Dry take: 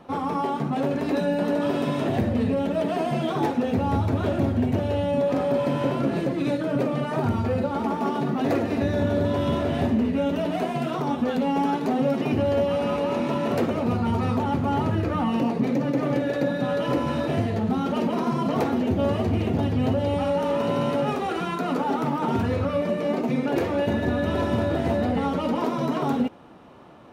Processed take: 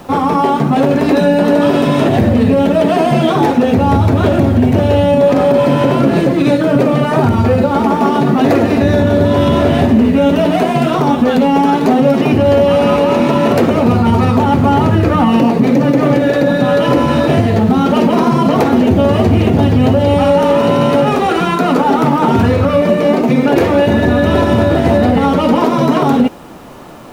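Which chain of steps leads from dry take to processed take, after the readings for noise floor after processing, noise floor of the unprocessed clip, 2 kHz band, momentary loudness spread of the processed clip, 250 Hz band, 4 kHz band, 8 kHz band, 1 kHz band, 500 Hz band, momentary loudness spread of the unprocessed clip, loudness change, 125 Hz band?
-15 dBFS, -29 dBFS, +13.5 dB, 2 LU, +13.0 dB, +13.5 dB, no reading, +13.5 dB, +13.0 dB, 2 LU, +13.0 dB, +13.0 dB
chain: added noise pink -59 dBFS; loudness maximiser +15 dB; trim -1 dB

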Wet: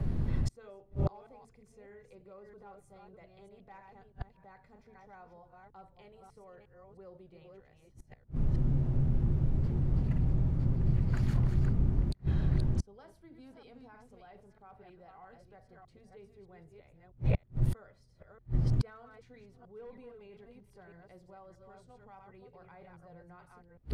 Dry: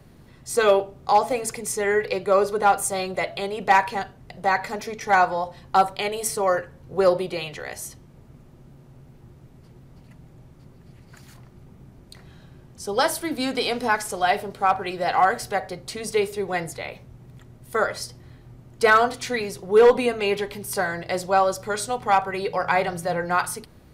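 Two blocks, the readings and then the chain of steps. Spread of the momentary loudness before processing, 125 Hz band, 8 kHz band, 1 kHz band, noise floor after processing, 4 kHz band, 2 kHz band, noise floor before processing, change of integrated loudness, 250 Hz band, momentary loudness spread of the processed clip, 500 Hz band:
12 LU, +8.0 dB, under -25 dB, -31.5 dB, -64 dBFS, under -25 dB, -30.0 dB, -50 dBFS, -9.0 dB, -7.0 dB, 17 LU, -25.5 dB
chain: chunks repeated in reverse 317 ms, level -6 dB; in parallel at -3 dB: compressor with a negative ratio -25 dBFS, ratio -1; on the sum: inverted gate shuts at -23 dBFS, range -38 dB; RIAA curve playback

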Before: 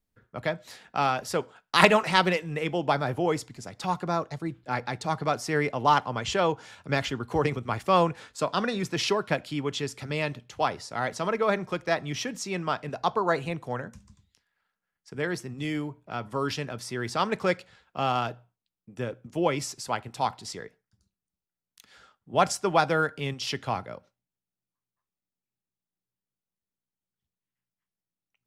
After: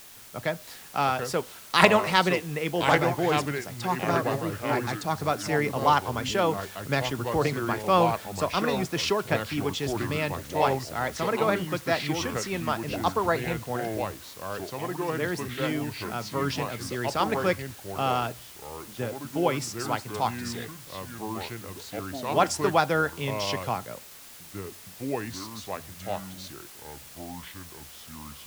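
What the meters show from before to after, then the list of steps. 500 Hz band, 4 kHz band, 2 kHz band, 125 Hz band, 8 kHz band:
+1.5 dB, +1.0 dB, +1.0 dB, +2.0 dB, +2.5 dB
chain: word length cut 8-bit, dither triangular; ever faster or slower copies 617 ms, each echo -4 st, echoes 2, each echo -6 dB

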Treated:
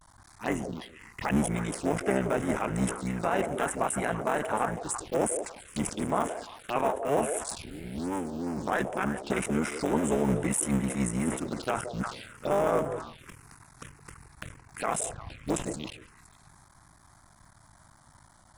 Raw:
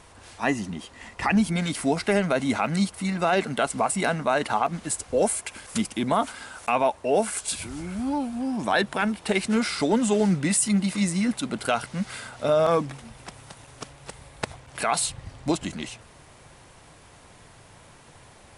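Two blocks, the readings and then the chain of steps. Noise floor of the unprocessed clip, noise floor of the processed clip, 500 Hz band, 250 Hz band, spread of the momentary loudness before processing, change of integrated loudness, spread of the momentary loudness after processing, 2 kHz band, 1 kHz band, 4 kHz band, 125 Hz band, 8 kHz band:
-51 dBFS, -58 dBFS, -4.5 dB, -5.5 dB, 14 LU, -5.0 dB, 15 LU, -6.5 dB, -4.5 dB, -11.0 dB, -3.5 dB, -5.0 dB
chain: cycle switcher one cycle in 3, muted; on a send: repeats whose band climbs or falls 171 ms, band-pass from 490 Hz, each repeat 1.4 oct, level -5.5 dB; on the sum: touch-sensitive phaser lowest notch 400 Hz, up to 4.4 kHz, full sweep at -24 dBFS; vibrato 0.31 Hz 39 cents; decay stretcher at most 110 dB/s; trim -3.5 dB

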